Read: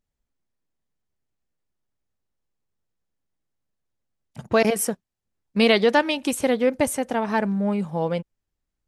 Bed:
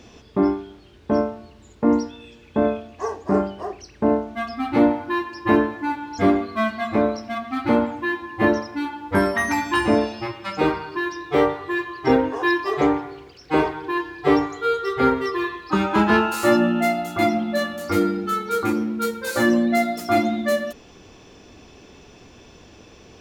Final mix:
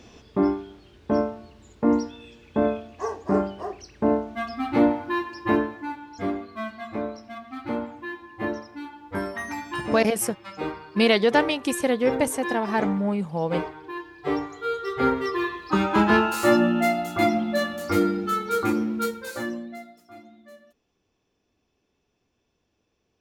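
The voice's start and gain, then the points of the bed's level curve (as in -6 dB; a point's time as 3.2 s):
5.40 s, -1.5 dB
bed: 5.31 s -2.5 dB
6.19 s -10.5 dB
14.07 s -10.5 dB
15.39 s -1.5 dB
19.01 s -1.5 dB
20.07 s -27.5 dB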